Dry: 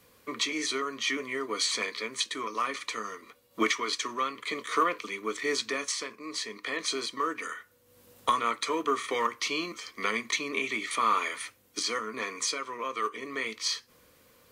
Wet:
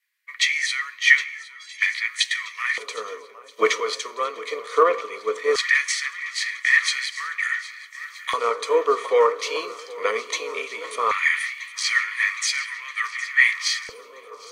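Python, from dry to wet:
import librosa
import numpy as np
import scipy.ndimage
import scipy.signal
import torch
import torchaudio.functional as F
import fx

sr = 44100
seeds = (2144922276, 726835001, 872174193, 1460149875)

p1 = fx.peak_eq(x, sr, hz=340.0, db=-8.0, octaves=1.1)
p2 = fx.rider(p1, sr, range_db=3, speed_s=0.5)
p3 = p1 + (p2 * 10.0 ** (0.0 / 20.0))
p4 = fx.stiff_resonator(p3, sr, f0_hz=200.0, decay_s=0.33, stiffness=0.03, at=(1.23, 1.8), fade=0.02)
p5 = p4 + fx.echo_swing(p4, sr, ms=1278, ratio=1.5, feedback_pct=67, wet_db=-12.5, dry=0)
p6 = fx.rev_freeverb(p5, sr, rt60_s=4.1, hf_ratio=0.55, predelay_ms=15, drr_db=16.5)
p7 = fx.filter_lfo_highpass(p6, sr, shape='square', hz=0.18, low_hz=470.0, high_hz=1900.0, q=6.1)
p8 = fx.band_widen(p7, sr, depth_pct=70)
y = p8 * 10.0 ** (-3.5 / 20.0)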